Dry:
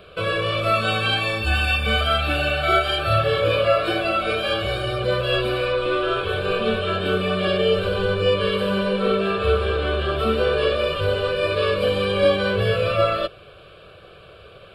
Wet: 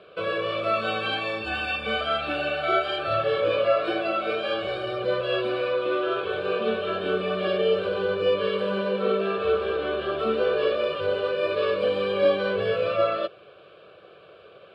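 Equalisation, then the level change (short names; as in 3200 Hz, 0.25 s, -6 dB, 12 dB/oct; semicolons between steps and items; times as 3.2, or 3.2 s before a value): HPF 300 Hz 12 dB/oct; LPF 6100 Hz 12 dB/oct; tilt -2 dB/oct; -4.0 dB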